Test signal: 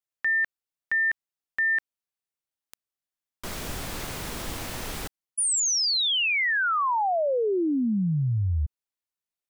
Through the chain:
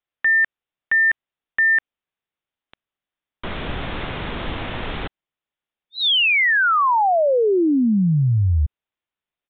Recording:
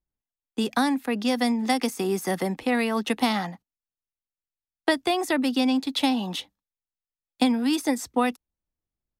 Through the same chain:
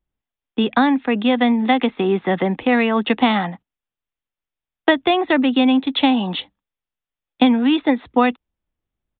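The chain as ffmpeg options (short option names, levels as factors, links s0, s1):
-af "aresample=8000,aresample=44100,volume=2.37"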